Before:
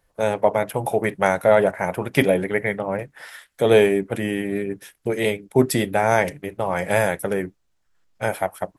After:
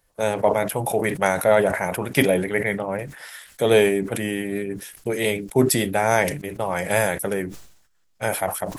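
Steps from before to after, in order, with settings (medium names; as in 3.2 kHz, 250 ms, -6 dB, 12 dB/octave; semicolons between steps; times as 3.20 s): treble shelf 3.8 kHz +8 dB; decay stretcher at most 79 dB/s; trim -2 dB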